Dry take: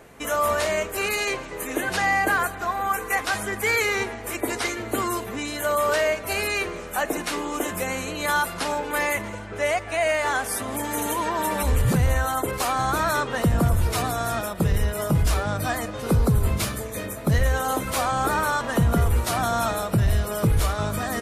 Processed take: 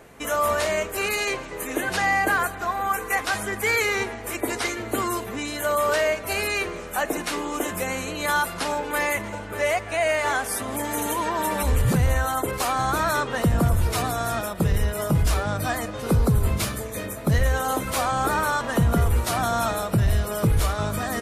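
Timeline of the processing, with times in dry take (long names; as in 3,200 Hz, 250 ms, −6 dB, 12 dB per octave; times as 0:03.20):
0:08.73–0:09.76: delay throw 590 ms, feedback 30%, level −11.5 dB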